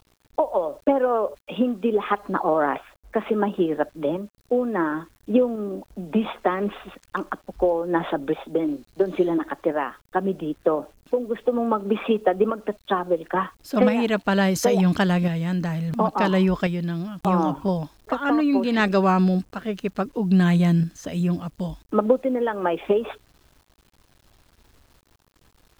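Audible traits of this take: tremolo saw up 0.72 Hz, depth 45%; a quantiser's noise floor 10-bit, dither none

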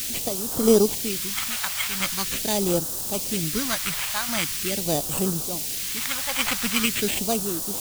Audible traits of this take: aliases and images of a low sample rate 5400 Hz, jitter 0%; random-step tremolo, depth 75%; a quantiser's noise floor 6-bit, dither triangular; phasing stages 2, 0.43 Hz, lowest notch 320–2100 Hz

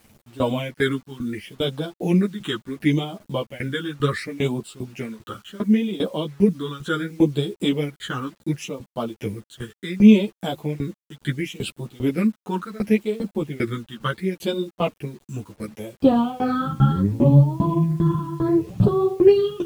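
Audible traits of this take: phasing stages 8, 0.7 Hz, lowest notch 630–2000 Hz; tremolo saw down 2.5 Hz, depth 95%; a quantiser's noise floor 10-bit, dither none; a shimmering, thickened sound

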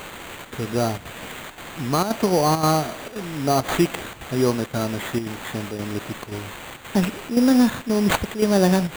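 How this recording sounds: a quantiser's noise floor 6-bit, dither triangular; chopped level 1.9 Hz, depth 60%, duty 85%; aliases and images of a low sample rate 5300 Hz, jitter 0%

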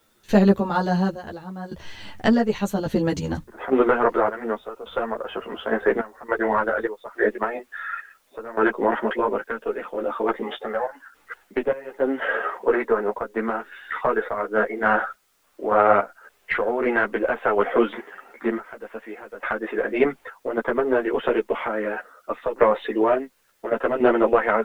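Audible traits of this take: random-step tremolo, depth 90%; a quantiser's noise floor 12-bit, dither triangular; a shimmering, thickened sound

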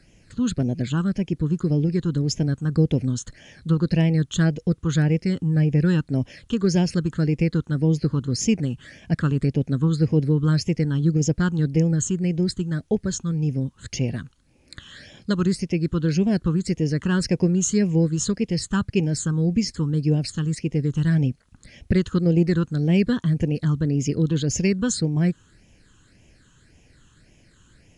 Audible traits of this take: phasing stages 8, 1.8 Hz, lowest notch 640–1300 Hz; a quantiser's noise floor 12-bit, dither triangular; MP3

